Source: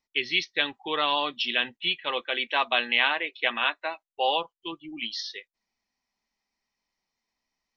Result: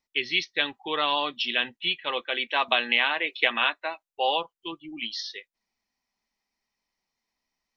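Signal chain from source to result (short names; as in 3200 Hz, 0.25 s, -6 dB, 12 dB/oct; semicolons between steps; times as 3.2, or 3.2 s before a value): 2.68–3.73 three-band squash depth 100%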